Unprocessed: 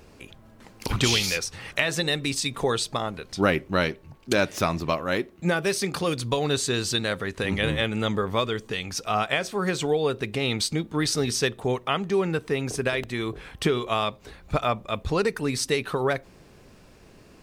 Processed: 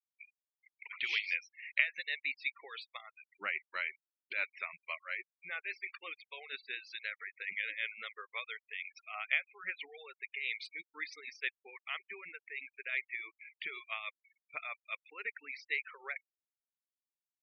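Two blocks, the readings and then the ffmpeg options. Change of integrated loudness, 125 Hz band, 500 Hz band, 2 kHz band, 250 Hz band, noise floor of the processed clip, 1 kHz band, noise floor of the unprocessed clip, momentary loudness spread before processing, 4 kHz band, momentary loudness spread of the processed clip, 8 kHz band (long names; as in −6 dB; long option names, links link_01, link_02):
−13.0 dB, below −40 dB, −30.0 dB, −6.5 dB, below −35 dB, below −85 dBFS, −20.0 dB, −52 dBFS, 6 LU, −17.0 dB, 13 LU, below −30 dB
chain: -af "tremolo=f=6.1:d=0.44,bandpass=frequency=2200:width_type=q:width=5.8:csg=0,afftfilt=real='re*gte(hypot(re,im),0.00631)':imag='im*gte(hypot(re,im),0.00631)':win_size=1024:overlap=0.75,volume=1dB"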